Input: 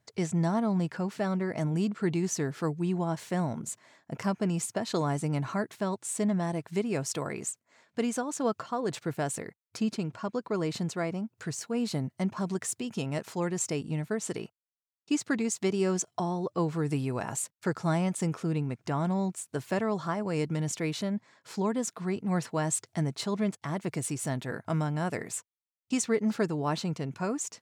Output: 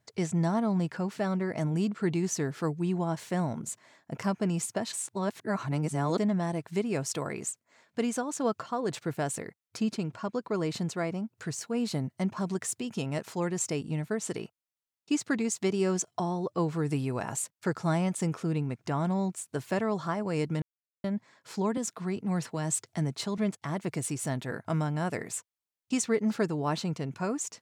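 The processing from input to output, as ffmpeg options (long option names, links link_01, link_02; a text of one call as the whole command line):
ffmpeg -i in.wav -filter_complex "[0:a]asettb=1/sr,asplit=3[link_01][link_02][link_03];[link_01]atrim=end=21.774[link_04];[link_02]atrim=start=21.77:end=23.38,asetpts=PTS-STARTPTS,afade=type=in:duration=0.004:curve=qsin,afade=type=out:start_time=1.606:duration=0.004:curve=qsin,acrossover=split=240|3000[link_05][link_06][link_07];[link_06]acompressor=threshold=-31dB:ratio=6:attack=3.2:release=140:knee=2.83:detection=peak[link_08];[link_05][link_08][link_07]amix=inputs=3:normalize=0[link_09];[link_03]atrim=start=23.376[link_10];[link_04][link_09]acrossfade=duration=0.004:curve1=hsin:curve2=qsin[link_11];[link_11][link_10]acrossfade=duration=0.004:curve1=qsin:curve2=hsin,asplit=5[link_12][link_13][link_14][link_15][link_16];[link_12]atrim=end=4.932[link_17];[link_13]atrim=start=4.928:end=6.182,asetpts=PTS-STARTPTS,areverse[link_18];[link_14]atrim=start=6.178:end=20.62,asetpts=PTS-STARTPTS,afade=type=out:start_time=14.438:duration=0.004:curve=hsin[link_19];[link_15]atrim=start=20.62:end=21.04,asetpts=PTS-STARTPTS,volume=0[link_20];[link_16]atrim=start=21.04,asetpts=PTS-STARTPTS,afade=type=in:duration=0.004:curve=hsin[link_21];[link_17][link_18]acrossfade=duration=0.004:curve1=hsin:curve2=hsin[link_22];[link_19][link_20][link_21]concat=n=3:v=0:a=1[link_23];[link_22][link_23]acrossfade=duration=0.004:curve1=hsin:curve2=hsin" out.wav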